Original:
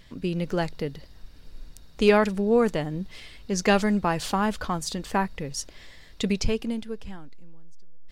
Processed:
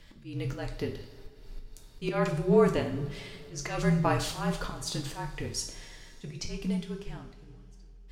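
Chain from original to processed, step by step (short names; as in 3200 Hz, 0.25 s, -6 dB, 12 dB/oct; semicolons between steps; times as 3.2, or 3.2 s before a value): frequency shift -42 Hz; auto swell 0.209 s; two-slope reverb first 0.49 s, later 3 s, from -18 dB, DRR 2.5 dB; gain -3 dB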